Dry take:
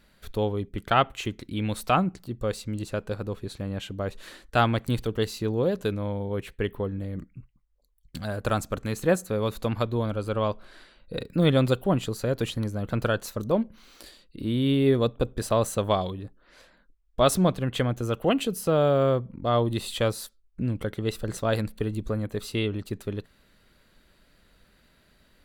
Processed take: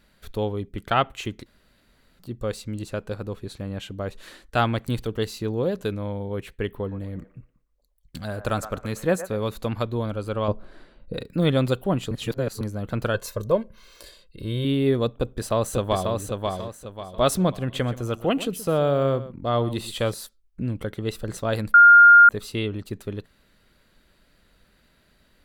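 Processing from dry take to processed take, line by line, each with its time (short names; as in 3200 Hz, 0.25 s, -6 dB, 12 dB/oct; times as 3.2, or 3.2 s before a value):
1.46–2.19 room tone
6.68–9.43 band-limited delay 0.117 s, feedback 31%, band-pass 1000 Hz, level -10 dB
10.48–11.14 tilt shelf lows +8 dB, about 1100 Hz
12.11–12.61 reverse
13.14–14.65 comb 1.9 ms, depth 70%
15.19–16.14 echo throw 0.54 s, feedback 35%, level -3.5 dB
17.6–20.14 echo 0.125 s -15.5 dB
21.74–22.29 bleep 1410 Hz -7 dBFS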